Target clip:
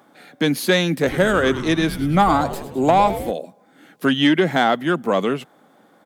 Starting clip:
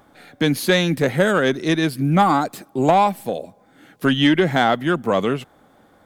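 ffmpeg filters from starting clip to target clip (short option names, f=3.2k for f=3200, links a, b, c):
-filter_complex "[0:a]highpass=f=150:w=0.5412,highpass=f=150:w=1.3066,asplit=3[a][b][c];[a]afade=t=out:st=1.05:d=0.02[d];[b]asplit=8[e][f][g][h][i][j][k][l];[f]adelay=104,afreqshift=-140,volume=-12dB[m];[g]adelay=208,afreqshift=-280,volume=-16.4dB[n];[h]adelay=312,afreqshift=-420,volume=-20.9dB[o];[i]adelay=416,afreqshift=-560,volume=-25.3dB[p];[j]adelay=520,afreqshift=-700,volume=-29.7dB[q];[k]adelay=624,afreqshift=-840,volume=-34.2dB[r];[l]adelay=728,afreqshift=-980,volume=-38.6dB[s];[e][m][n][o][p][q][r][s]amix=inputs=8:normalize=0,afade=t=in:st=1.05:d=0.02,afade=t=out:st=3.3:d=0.02[t];[c]afade=t=in:st=3.3:d=0.02[u];[d][t][u]amix=inputs=3:normalize=0"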